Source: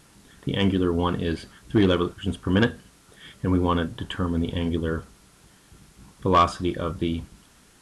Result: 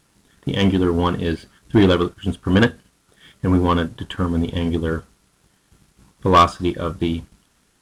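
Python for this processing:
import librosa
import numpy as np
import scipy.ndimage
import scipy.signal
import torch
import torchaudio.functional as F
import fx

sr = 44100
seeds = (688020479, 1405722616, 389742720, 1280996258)

y = fx.leveller(x, sr, passes=1)
y = fx.upward_expand(y, sr, threshold_db=-34.0, expansion=1.5)
y = F.gain(torch.from_numpy(y), 5.0).numpy()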